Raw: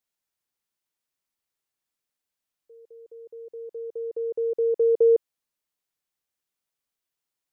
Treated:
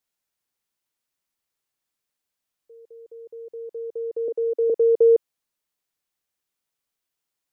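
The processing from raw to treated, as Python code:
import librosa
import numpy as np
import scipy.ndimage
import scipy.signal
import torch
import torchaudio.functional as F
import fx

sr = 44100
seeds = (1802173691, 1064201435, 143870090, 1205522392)

y = fx.ellip_highpass(x, sr, hz=270.0, order=4, stop_db=40, at=(4.28, 4.7))
y = F.gain(torch.from_numpy(y), 2.5).numpy()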